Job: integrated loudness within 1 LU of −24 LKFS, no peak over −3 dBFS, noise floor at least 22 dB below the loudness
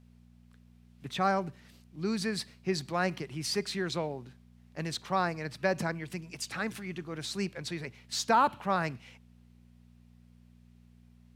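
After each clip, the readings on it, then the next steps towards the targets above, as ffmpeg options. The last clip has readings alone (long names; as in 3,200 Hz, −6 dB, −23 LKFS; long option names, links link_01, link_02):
mains hum 60 Hz; hum harmonics up to 240 Hz; level of the hum −56 dBFS; integrated loudness −32.5 LKFS; sample peak −12.5 dBFS; target loudness −24.0 LKFS
→ -af "bandreject=frequency=60:width_type=h:width=4,bandreject=frequency=120:width_type=h:width=4,bandreject=frequency=180:width_type=h:width=4,bandreject=frequency=240:width_type=h:width=4"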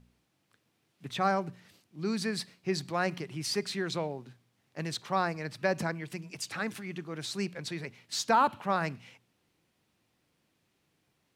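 mains hum none found; integrated loudness −32.5 LKFS; sample peak −13.0 dBFS; target loudness −24.0 LKFS
→ -af "volume=8.5dB"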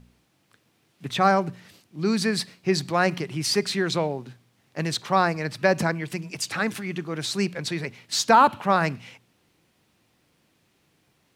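integrated loudness −24.5 LKFS; sample peak −4.5 dBFS; background noise floor −67 dBFS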